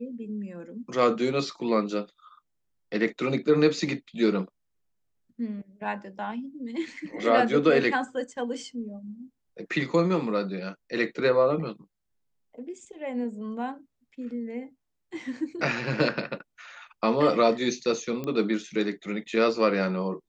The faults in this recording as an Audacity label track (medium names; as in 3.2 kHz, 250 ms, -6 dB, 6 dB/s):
18.240000	18.240000	pop -20 dBFS